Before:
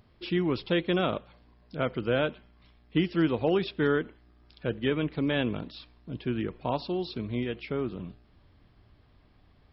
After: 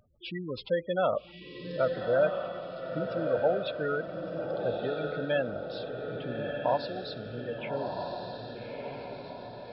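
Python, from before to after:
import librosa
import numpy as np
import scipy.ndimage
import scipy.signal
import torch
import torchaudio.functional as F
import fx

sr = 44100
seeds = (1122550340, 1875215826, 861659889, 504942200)

y = fx.spec_gate(x, sr, threshold_db=-15, keep='strong')
y = fx.low_shelf_res(y, sr, hz=450.0, db=-7.0, q=3.0)
y = fx.echo_diffused(y, sr, ms=1258, feedback_pct=53, wet_db=-4)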